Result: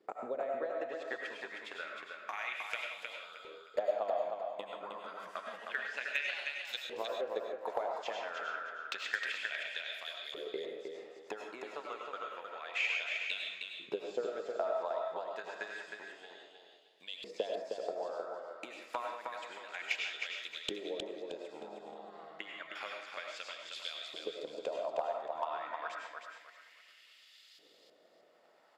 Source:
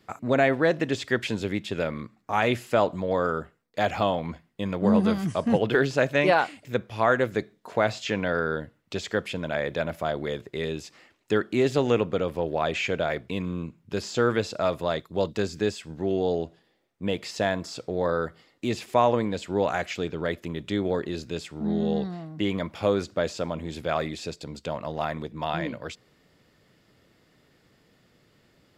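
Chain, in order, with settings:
downward compressor 4 to 1, threshold −39 dBFS, peak gain reduction 19.5 dB
low-shelf EQ 95 Hz −9.5 dB
de-essing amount 100%
transient designer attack +9 dB, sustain −4 dB
RIAA equalisation recording
convolution reverb RT60 0.50 s, pre-delay 60 ms, DRR 1.5 dB
auto-filter band-pass saw up 0.29 Hz 410–4,100 Hz
repeating echo 312 ms, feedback 28%, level −5 dB
gain into a clipping stage and back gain 25 dB
level +3.5 dB

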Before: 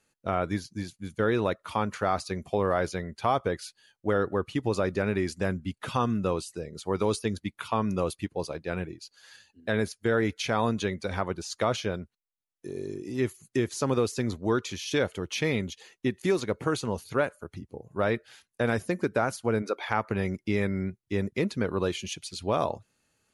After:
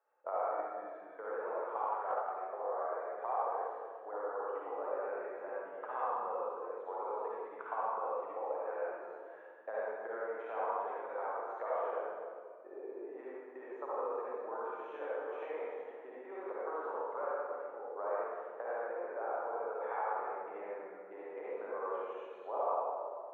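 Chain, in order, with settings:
downward compressor, threshold −33 dBFS, peak gain reduction 12.5 dB
inverse Chebyshev low-pass filter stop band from 4,400 Hz, stop band 70 dB
first difference
convolution reverb RT60 2.0 s, pre-delay 48 ms, DRR −8.5 dB
speech leveller within 3 dB 2 s
high-pass filter 480 Hz 24 dB per octave
0:01.82–0:02.49: transient designer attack +6 dB, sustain −3 dB
level +17 dB

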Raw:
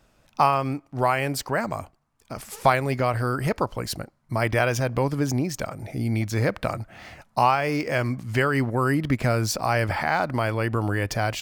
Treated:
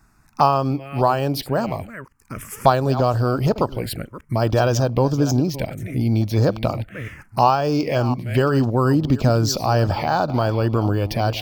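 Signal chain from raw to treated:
delay that plays each chunk backwards 354 ms, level −13.5 dB
phaser swept by the level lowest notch 540 Hz, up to 2,100 Hz, full sweep at −20 dBFS
level +6 dB

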